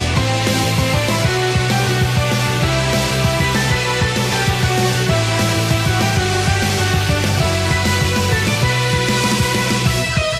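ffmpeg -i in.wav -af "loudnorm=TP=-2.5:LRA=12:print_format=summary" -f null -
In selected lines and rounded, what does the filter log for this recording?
Input Integrated:    -15.9 LUFS
Input True Peak:      -3.8 dBTP
Input LRA:             0.3 LU
Input Threshold:     -25.9 LUFS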